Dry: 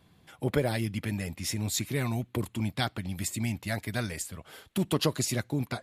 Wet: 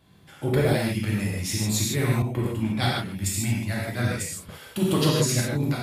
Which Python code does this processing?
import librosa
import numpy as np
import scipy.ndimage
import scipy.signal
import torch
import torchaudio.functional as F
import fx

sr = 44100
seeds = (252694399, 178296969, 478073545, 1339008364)

y = fx.rev_gated(x, sr, seeds[0], gate_ms=180, shape='flat', drr_db=-4.5)
y = fx.band_widen(y, sr, depth_pct=70, at=(2.22, 4.49))